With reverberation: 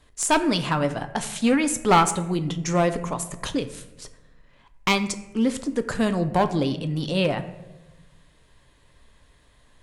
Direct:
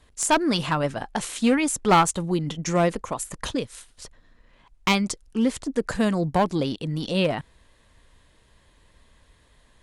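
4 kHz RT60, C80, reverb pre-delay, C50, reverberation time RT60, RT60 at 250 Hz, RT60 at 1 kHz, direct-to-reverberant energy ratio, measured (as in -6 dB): 0.60 s, 15.0 dB, 7 ms, 13.0 dB, 1.1 s, 1.4 s, 0.90 s, 9.0 dB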